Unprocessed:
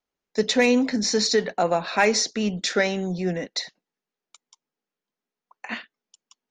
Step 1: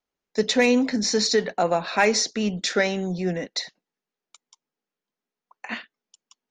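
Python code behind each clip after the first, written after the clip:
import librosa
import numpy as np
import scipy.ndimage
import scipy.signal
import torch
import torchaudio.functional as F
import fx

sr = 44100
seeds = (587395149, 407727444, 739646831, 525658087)

y = x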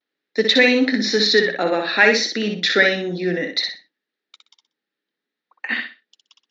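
y = fx.vibrato(x, sr, rate_hz=0.58, depth_cents=37.0)
y = fx.cabinet(y, sr, low_hz=220.0, low_slope=12, high_hz=4800.0, hz=(310.0, 700.0, 1000.0, 1800.0, 3800.0), db=(6, -6, -8, 9, 7))
y = fx.echo_feedback(y, sr, ms=62, feedback_pct=25, wet_db=-5)
y = y * librosa.db_to_amplitude(3.5)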